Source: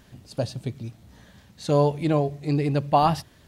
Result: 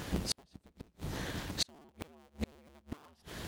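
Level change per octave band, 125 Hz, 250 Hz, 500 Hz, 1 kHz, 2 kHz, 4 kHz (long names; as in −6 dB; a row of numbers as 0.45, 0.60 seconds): −18.0, −16.0, −23.0, −25.5, −5.5, −0.5 decibels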